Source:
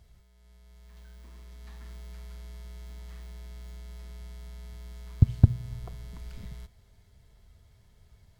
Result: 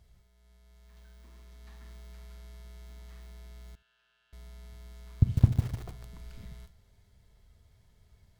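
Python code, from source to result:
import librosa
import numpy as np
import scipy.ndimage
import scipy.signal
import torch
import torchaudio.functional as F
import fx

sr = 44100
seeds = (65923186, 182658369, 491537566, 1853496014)

y = fx.rev_schroeder(x, sr, rt60_s=0.4, comb_ms=32, drr_db=11.5)
y = fx.quant_float(y, sr, bits=6, at=(2.12, 2.65))
y = fx.double_bandpass(y, sr, hz=2100.0, octaves=0.77, at=(3.75, 4.33))
y = y + 10.0 ** (-22.0 / 20.0) * np.pad(y, (int(71 * sr / 1000.0), 0))[:len(y)]
y = fx.echo_crushed(y, sr, ms=150, feedback_pct=35, bits=6, wet_db=-6)
y = y * 10.0 ** (-3.5 / 20.0)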